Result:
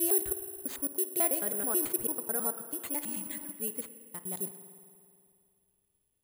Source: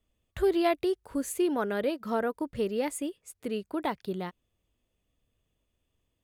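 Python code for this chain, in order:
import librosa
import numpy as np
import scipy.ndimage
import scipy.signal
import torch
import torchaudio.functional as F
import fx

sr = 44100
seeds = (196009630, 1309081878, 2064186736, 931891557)

y = fx.block_reorder(x, sr, ms=109.0, group=6)
y = fx.spec_repair(y, sr, seeds[0], start_s=3.06, length_s=0.43, low_hz=270.0, high_hz=1600.0, source='before')
y = fx.rev_spring(y, sr, rt60_s=2.4, pass_ms=(54,), chirp_ms=40, drr_db=10.0)
y = (np.kron(y[::4], np.eye(4)[0]) * 4)[:len(y)]
y = F.gain(torch.from_numpy(y), -8.5).numpy()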